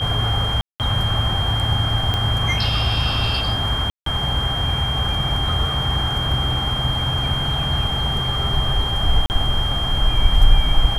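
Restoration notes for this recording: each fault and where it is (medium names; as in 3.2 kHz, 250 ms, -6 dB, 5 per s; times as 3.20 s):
whine 3.2 kHz -23 dBFS
0.61–0.80 s: dropout 188 ms
2.14 s: pop -9 dBFS
3.90–4.06 s: dropout 163 ms
9.26–9.30 s: dropout 39 ms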